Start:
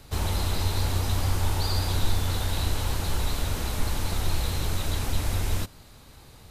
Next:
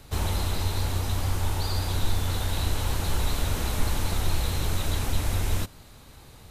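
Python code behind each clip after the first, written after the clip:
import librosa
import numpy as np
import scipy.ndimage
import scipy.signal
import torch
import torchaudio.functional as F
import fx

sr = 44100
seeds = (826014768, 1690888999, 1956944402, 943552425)

y = fx.peak_eq(x, sr, hz=4800.0, db=-2.5, octaves=0.32)
y = fx.rider(y, sr, range_db=10, speed_s=0.5)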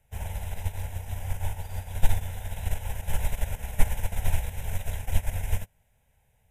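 y = fx.fixed_phaser(x, sr, hz=1200.0, stages=6)
y = fx.upward_expand(y, sr, threshold_db=-33.0, expansion=2.5)
y = F.gain(torch.from_numpy(y), 8.0).numpy()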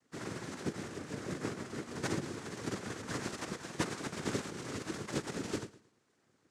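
y = fx.noise_vocoder(x, sr, seeds[0], bands=3)
y = fx.echo_feedback(y, sr, ms=111, feedback_pct=29, wet_db=-17.0)
y = F.gain(torch.from_numpy(y), -1.5).numpy()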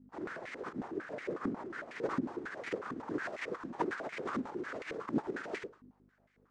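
y = fx.add_hum(x, sr, base_hz=50, snr_db=15)
y = fx.filter_held_bandpass(y, sr, hz=11.0, low_hz=260.0, high_hz=2100.0)
y = F.gain(torch.from_numpy(y), 11.0).numpy()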